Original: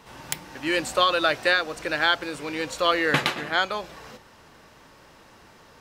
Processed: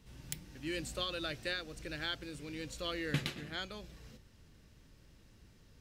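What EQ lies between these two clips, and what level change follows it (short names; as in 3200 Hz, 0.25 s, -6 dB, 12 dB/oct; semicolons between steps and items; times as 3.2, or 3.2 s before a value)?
passive tone stack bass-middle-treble 10-0-1; +9.0 dB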